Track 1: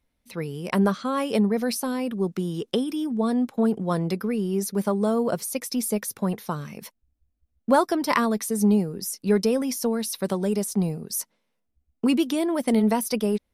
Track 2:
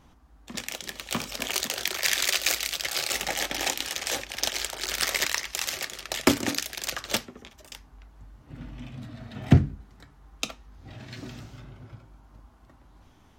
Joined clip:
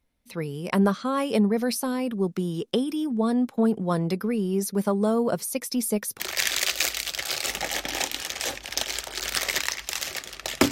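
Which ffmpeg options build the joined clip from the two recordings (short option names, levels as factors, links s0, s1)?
-filter_complex "[0:a]apad=whole_dur=10.71,atrim=end=10.71,atrim=end=6.202[s0];[1:a]atrim=start=1.858:end=6.37[s1];[s0][s1]acrossfade=d=0.004:c1=hsin:c2=hsin"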